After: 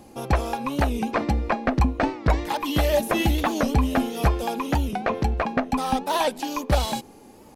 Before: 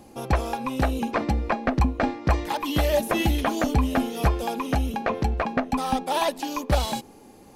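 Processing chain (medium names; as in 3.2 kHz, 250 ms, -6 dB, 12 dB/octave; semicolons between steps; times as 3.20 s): warped record 45 rpm, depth 160 cents; trim +1 dB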